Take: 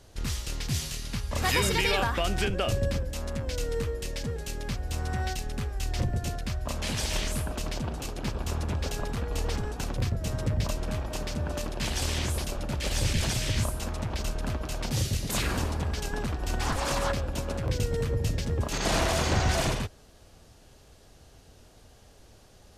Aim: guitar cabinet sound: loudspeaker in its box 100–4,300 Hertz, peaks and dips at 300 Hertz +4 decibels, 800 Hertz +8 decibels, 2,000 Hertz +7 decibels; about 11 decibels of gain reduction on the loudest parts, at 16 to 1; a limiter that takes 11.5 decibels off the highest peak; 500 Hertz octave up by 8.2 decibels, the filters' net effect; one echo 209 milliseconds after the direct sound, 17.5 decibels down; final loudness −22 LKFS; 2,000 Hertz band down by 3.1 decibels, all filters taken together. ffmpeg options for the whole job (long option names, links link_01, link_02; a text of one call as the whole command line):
ffmpeg -i in.wav -af "equalizer=frequency=500:width_type=o:gain=9,equalizer=frequency=2000:width_type=o:gain=-8.5,acompressor=threshold=-30dB:ratio=16,alimiter=level_in=6.5dB:limit=-24dB:level=0:latency=1,volume=-6.5dB,highpass=100,equalizer=frequency=300:width_type=q:width=4:gain=4,equalizer=frequency=800:width_type=q:width=4:gain=8,equalizer=frequency=2000:width_type=q:width=4:gain=7,lowpass=frequency=4300:width=0.5412,lowpass=frequency=4300:width=1.3066,aecho=1:1:209:0.133,volume=18dB" out.wav